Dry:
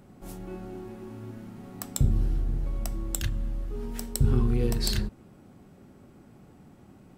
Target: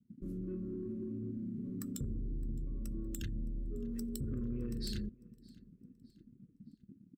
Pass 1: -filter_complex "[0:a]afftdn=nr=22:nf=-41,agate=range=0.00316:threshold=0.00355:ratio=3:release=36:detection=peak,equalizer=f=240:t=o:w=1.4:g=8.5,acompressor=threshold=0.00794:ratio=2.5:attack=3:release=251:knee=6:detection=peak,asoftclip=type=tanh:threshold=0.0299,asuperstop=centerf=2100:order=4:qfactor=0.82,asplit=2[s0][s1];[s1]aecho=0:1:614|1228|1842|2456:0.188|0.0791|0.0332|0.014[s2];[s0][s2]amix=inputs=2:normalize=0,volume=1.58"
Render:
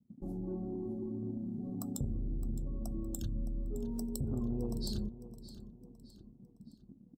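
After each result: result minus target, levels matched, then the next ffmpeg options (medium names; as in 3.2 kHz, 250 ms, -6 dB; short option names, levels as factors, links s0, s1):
2 kHz band -14.5 dB; echo-to-direct +10 dB; saturation: distortion -7 dB
-filter_complex "[0:a]afftdn=nr=22:nf=-41,agate=range=0.00316:threshold=0.00355:ratio=3:release=36:detection=peak,equalizer=f=240:t=o:w=1.4:g=8.5,acompressor=threshold=0.00794:ratio=2.5:attack=3:release=251:knee=6:detection=peak,asoftclip=type=tanh:threshold=0.0299,asuperstop=centerf=780:order=4:qfactor=0.82,asplit=2[s0][s1];[s1]aecho=0:1:614|1228|1842|2456:0.188|0.0791|0.0332|0.014[s2];[s0][s2]amix=inputs=2:normalize=0,volume=1.58"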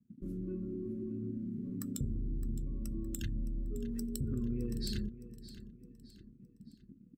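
echo-to-direct +10 dB; saturation: distortion -7 dB
-filter_complex "[0:a]afftdn=nr=22:nf=-41,agate=range=0.00316:threshold=0.00355:ratio=3:release=36:detection=peak,equalizer=f=240:t=o:w=1.4:g=8.5,acompressor=threshold=0.00794:ratio=2.5:attack=3:release=251:knee=6:detection=peak,asoftclip=type=tanh:threshold=0.0299,asuperstop=centerf=780:order=4:qfactor=0.82,asplit=2[s0][s1];[s1]aecho=0:1:614|1228|1842:0.0596|0.025|0.0105[s2];[s0][s2]amix=inputs=2:normalize=0,volume=1.58"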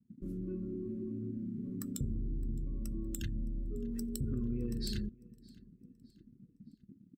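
saturation: distortion -7 dB
-filter_complex "[0:a]afftdn=nr=22:nf=-41,agate=range=0.00316:threshold=0.00355:ratio=3:release=36:detection=peak,equalizer=f=240:t=o:w=1.4:g=8.5,acompressor=threshold=0.00794:ratio=2.5:attack=3:release=251:knee=6:detection=peak,asoftclip=type=tanh:threshold=0.015,asuperstop=centerf=780:order=4:qfactor=0.82,asplit=2[s0][s1];[s1]aecho=0:1:614|1228|1842:0.0596|0.025|0.0105[s2];[s0][s2]amix=inputs=2:normalize=0,volume=1.58"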